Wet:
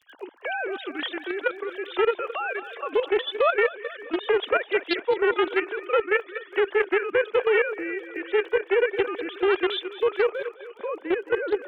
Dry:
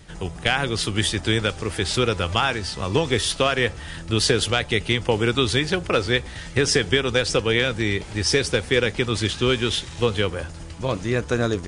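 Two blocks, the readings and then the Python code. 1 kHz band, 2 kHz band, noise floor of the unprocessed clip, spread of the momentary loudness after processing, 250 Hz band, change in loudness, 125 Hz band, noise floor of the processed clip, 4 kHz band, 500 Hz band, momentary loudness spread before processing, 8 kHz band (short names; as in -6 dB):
-1.0 dB, -2.5 dB, -37 dBFS, 9 LU, -7.0 dB, -3.5 dB, under -30 dB, -49 dBFS, -12.0 dB, +0.5 dB, 6 LU, under -40 dB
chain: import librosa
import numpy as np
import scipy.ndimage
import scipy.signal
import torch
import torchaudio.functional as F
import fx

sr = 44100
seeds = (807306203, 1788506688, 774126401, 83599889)

y = fx.sine_speech(x, sr)
y = fx.echo_feedback(y, sr, ms=213, feedback_pct=56, wet_db=-13.5)
y = fx.level_steps(y, sr, step_db=10)
y = scipy.signal.sosfilt(scipy.signal.butter(4, 320.0, 'highpass', fs=sr, output='sos'), y)
y = fx.dmg_crackle(y, sr, seeds[0], per_s=23.0, level_db=-49.0)
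y = fx.doppler_dist(y, sr, depth_ms=0.19)
y = y * librosa.db_to_amplitude(1.5)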